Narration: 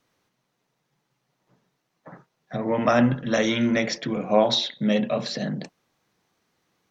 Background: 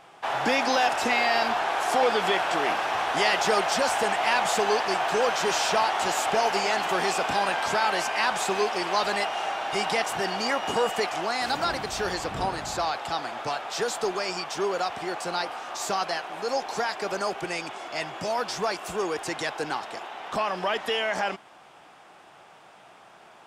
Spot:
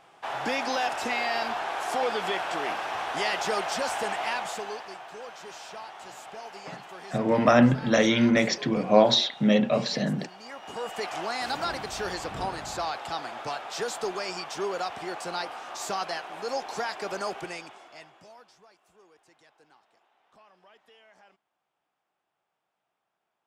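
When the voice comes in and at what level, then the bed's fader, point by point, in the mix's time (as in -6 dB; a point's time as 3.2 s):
4.60 s, +1.0 dB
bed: 4.21 s -5 dB
5.07 s -18 dB
10.41 s -18 dB
11.15 s -3.5 dB
17.38 s -3.5 dB
18.68 s -30.5 dB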